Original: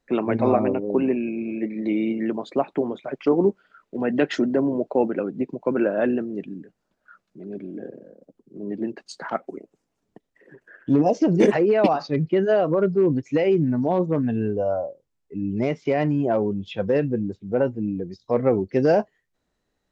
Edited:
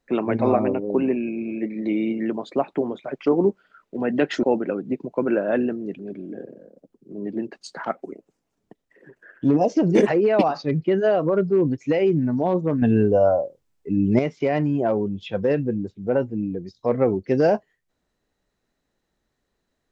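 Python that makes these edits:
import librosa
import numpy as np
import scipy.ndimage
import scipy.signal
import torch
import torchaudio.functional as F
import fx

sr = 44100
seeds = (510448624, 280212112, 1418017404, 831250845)

y = fx.edit(x, sr, fx.cut(start_s=4.43, length_s=0.49),
    fx.cut(start_s=6.48, length_s=0.96),
    fx.clip_gain(start_s=14.27, length_s=1.37, db=6.5), tone=tone)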